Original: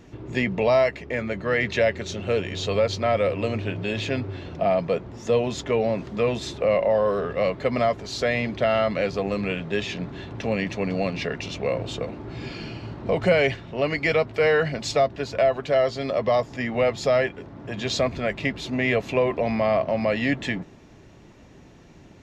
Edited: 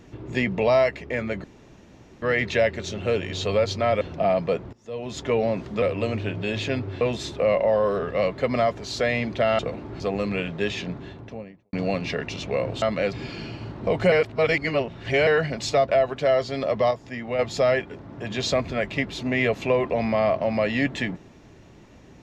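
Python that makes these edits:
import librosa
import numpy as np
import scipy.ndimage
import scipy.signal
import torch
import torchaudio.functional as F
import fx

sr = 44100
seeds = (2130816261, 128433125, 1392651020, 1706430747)

y = fx.studio_fade_out(x, sr, start_s=9.88, length_s=0.97)
y = fx.edit(y, sr, fx.insert_room_tone(at_s=1.44, length_s=0.78),
    fx.move(start_s=3.23, length_s=1.19, to_s=6.23),
    fx.fade_in_from(start_s=5.14, length_s=0.51, curve='qua', floor_db=-21.0),
    fx.swap(start_s=8.81, length_s=0.31, other_s=11.94, other_length_s=0.41),
    fx.reverse_span(start_s=13.34, length_s=1.15),
    fx.cut(start_s=15.11, length_s=0.25),
    fx.clip_gain(start_s=16.38, length_s=0.48, db=-5.5), tone=tone)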